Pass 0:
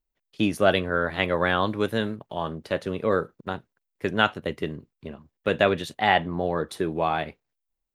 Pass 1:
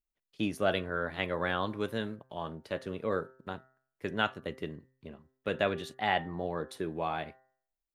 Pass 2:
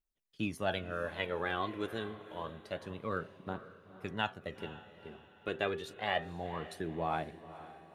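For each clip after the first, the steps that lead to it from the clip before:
de-hum 130.7 Hz, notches 15; trim -8.5 dB
phaser 0.28 Hz, delay 3 ms, feedback 50%; echo that smears into a reverb 481 ms, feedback 43%, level -14.5 dB; trim -4.5 dB

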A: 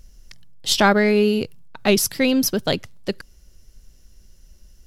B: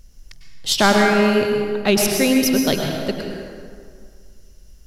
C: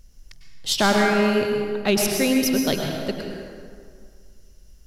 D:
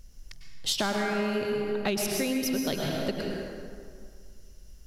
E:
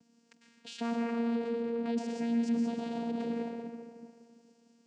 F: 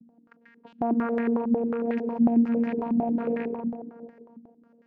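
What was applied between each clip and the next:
plate-style reverb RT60 2.1 s, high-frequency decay 0.6×, pre-delay 90 ms, DRR 1 dB
overload inside the chain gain 7.5 dB; trim -3.5 dB
compression 10:1, threshold -25 dBFS, peak gain reduction 11 dB
peak limiter -27 dBFS, peak gain reduction 11 dB; vocoder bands 8, saw 233 Hz; trim +3.5 dB
rattle on loud lows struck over -44 dBFS, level -34 dBFS; step-sequenced low-pass 11 Hz 230–1800 Hz; trim +3.5 dB

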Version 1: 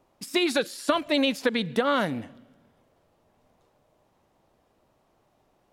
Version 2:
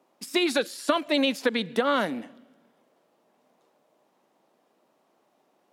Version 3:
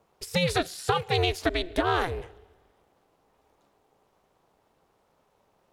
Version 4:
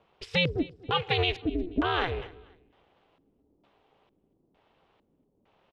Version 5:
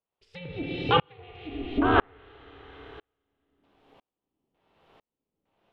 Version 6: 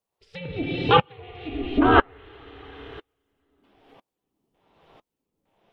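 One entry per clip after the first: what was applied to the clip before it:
high-pass 200 Hz 24 dB/octave
ring modulator 180 Hz; in parallel at -8 dB: saturation -24 dBFS, distortion -9 dB
peak limiter -17 dBFS, peak gain reduction 8.5 dB; LFO low-pass square 1.1 Hz 290–3100 Hz; feedback delay 242 ms, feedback 29%, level -22 dB
Schroeder reverb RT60 2 s, combs from 25 ms, DRR 1.5 dB; low-pass that closes with the level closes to 1.8 kHz, closed at -21 dBFS; sawtooth tremolo in dB swelling 1 Hz, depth 39 dB; trim +8.5 dB
coarse spectral quantiser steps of 15 dB; trim +5.5 dB

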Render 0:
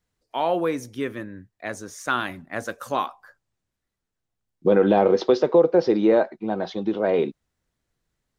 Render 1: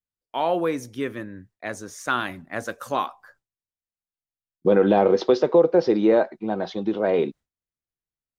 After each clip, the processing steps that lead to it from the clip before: gate with hold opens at -44 dBFS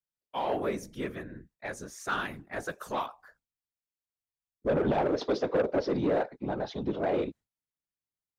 in parallel at -9.5 dB: hard clipper -19.5 dBFS, distortion -7 dB; on the sum: whisper effect; saturation -12.5 dBFS, distortion -12 dB; trim -8 dB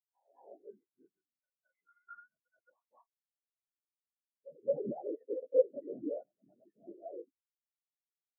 knee-point frequency compression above 1.4 kHz 4:1; reverse echo 218 ms -4.5 dB; spectral contrast expander 4:1

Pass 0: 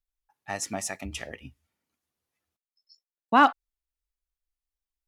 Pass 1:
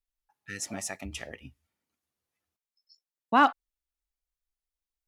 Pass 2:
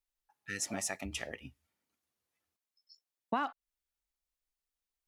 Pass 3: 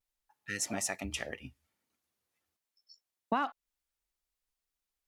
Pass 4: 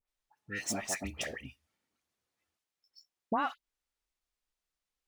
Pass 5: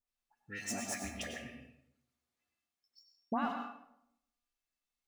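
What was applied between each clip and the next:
spectral replace 0.42–0.75 s, 500–1300 Hz both; trim -2.5 dB
bass shelf 140 Hz -5 dB; compression 16:1, threshold -29 dBFS, peak gain reduction 15 dB
vibrato 0.46 Hz 30 cents; trim +2 dB
median filter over 3 samples; phase dispersion highs, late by 77 ms, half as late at 1.9 kHz
feedback comb 240 Hz, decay 0.42 s, harmonics odd, mix 80%; reverberation RT60 0.80 s, pre-delay 90 ms, DRR 4.5 dB; trim +7.5 dB

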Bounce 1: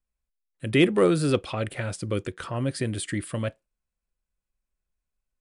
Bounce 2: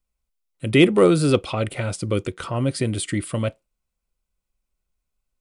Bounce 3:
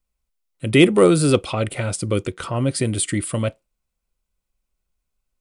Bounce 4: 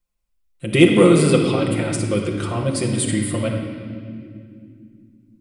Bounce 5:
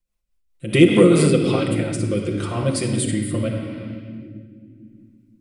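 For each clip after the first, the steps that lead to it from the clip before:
band-stop 1.7 kHz, Q 5.2; trim +5 dB
dynamic bell 9 kHz, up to +6 dB, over -46 dBFS, Q 1.3; trim +1.5 dB
reverberation, pre-delay 6 ms, DRR -1.5 dB; trim -3 dB
rotary cabinet horn 5 Hz, later 0.8 Hz, at 0.83 s; trim +1 dB

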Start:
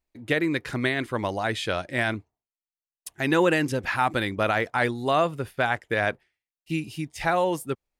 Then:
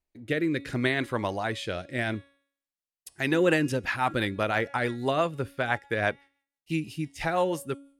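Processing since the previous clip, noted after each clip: de-hum 278.5 Hz, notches 40; rotary cabinet horn 0.7 Hz, later 6 Hz, at 2.83 s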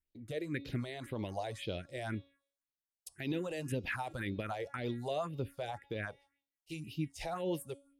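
peak limiter -20.5 dBFS, peak gain reduction 11.5 dB; phase shifter stages 4, 1.9 Hz, lowest notch 210–1700 Hz; trim -4.5 dB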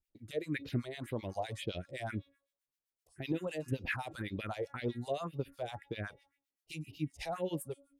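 harmonic tremolo 7.8 Hz, depth 100%, crossover 1.2 kHz; trim +4.5 dB

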